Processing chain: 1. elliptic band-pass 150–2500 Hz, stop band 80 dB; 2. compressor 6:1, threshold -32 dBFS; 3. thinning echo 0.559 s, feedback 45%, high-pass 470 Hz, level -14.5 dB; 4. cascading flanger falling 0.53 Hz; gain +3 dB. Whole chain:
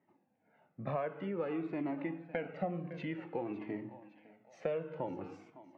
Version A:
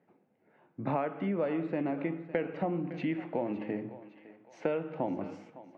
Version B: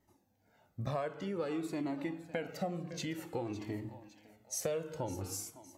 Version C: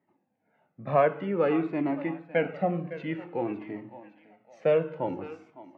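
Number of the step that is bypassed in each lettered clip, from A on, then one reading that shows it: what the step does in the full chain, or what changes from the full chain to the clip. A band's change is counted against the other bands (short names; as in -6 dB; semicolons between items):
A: 4, loudness change +5.0 LU; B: 1, 4 kHz band +11.0 dB; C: 2, momentary loudness spread change +4 LU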